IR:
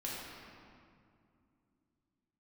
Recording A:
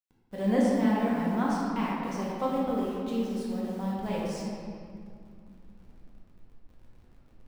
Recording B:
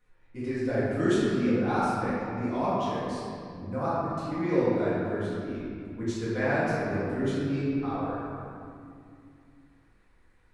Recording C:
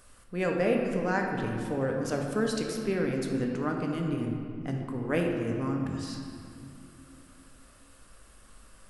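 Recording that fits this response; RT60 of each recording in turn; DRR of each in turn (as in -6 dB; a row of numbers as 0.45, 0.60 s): A; 2.4, 2.4, 2.3 s; -6.5, -11.5, 1.0 dB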